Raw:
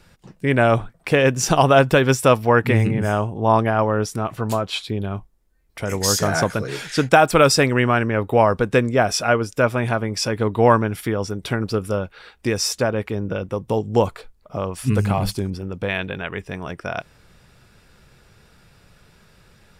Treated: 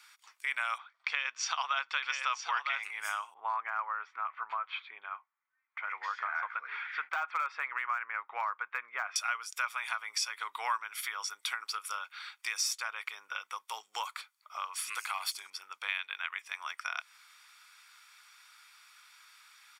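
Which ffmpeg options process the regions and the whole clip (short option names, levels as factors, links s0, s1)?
-filter_complex "[0:a]asettb=1/sr,asplit=3[s0][s1][s2];[s0]atrim=end=0.784[s3];[s1]atrim=start=0.78:end=2.83,asetpts=PTS-STARTPTS,afade=t=in:d=0.004:c=qsin,afade=t=out:st=2.046:d=0.004:c=qsin,lowpass=f=5000:w=0.5412,lowpass=f=5000:w=1.3066,aecho=1:1:960:0.501,atrim=end_sample=90405[s4];[s2]atrim=start=2.826[s5];[s3][s4]acrossfade=d=0.004:c1=hsin:c2=qsin[s6];[s6][s5]acrossfade=d=0.004:c1=qsin:c2=hsin,asettb=1/sr,asplit=3[s7][s8][s9];[s7]atrim=end=3.344[s10];[s8]atrim=start=3.34:end=9.16,asetpts=PTS-STARTPTS,afade=t=in:d=0.004:c=qsin,afade=t=out:st=5.816:d=0.004:c=qsin,lowpass=f=2100:w=0.5412,lowpass=f=2100:w=1.3066,deesser=0.85[s11];[s9]atrim=start=9.156[s12];[s10][s11]acrossfade=d=0.004:c1=hsin:c2=qsin[s13];[s13][s12]acrossfade=d=0.004:c1=qsin:c2=hsin,highpass=f=1200:w=0.5412,highpass=f=1200:w=1.3066,aecho=1:1:0.9:0.39,acompressor=threshold=0.02:ratio=2.5"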